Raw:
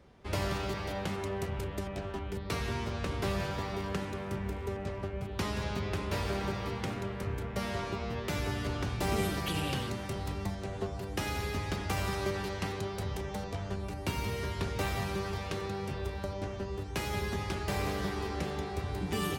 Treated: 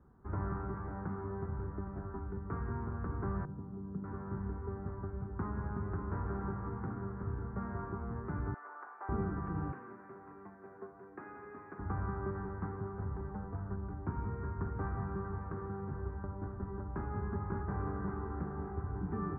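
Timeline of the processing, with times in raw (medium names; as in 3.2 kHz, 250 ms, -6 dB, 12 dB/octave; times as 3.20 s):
3.45–4.04 s: band-pass filter 190 Hz, Q 1.2
8.54–9.09 s: high-pass 610 Hz 24 dB/octave
9.72–11.79 s: cabinet simulation 430–2600 Hz, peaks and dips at 560 Hz -3 dB, 860 Hz -7 dB, 1.3 kHz -5 dB, 2.5 kHz +9 dB
16.05–17.05 s: echo throw 560 ms, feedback 60%, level -4 dB
whole clip: steep low-pass 1.5 kHz 48 dB/octave; peaking EQ 580 Hz -14 dB 0.64 oct; trim -2 dB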